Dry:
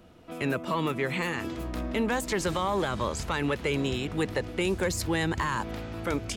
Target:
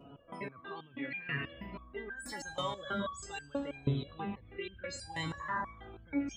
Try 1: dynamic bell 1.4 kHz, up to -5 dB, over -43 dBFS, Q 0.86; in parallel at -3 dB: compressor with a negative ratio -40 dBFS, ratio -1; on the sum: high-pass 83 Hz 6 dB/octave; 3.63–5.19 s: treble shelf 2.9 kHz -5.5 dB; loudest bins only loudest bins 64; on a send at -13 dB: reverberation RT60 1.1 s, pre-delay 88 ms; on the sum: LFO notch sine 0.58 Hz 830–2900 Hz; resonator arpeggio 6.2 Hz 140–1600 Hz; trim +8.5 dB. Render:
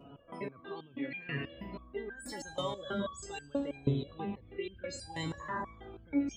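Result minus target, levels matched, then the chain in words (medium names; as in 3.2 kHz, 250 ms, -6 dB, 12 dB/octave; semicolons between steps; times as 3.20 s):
1 kHz band -2.5 dB
dynamic bell 380 Hz, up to -5 dB, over -43 dBFS, Q 0.86; in parallel at -3 dB: compressor with a negative ratio -40 dBFS, ratio -1; on the sum: high-pass 83 Hz 6 dB/octave; 3.63–5.19 s: treble shelf 2.9 kHz -5.5 dB; loudest bins only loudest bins 64; on a send at -13 dB: reverberation RT60 1.1 s, pre-delay 88 ms; on the sum: LFO notch sine 0.58 Hz 830–2900 Hz; resonator arpeggio 6.2 Hz 140–1600 Hz; trim +8.5 dB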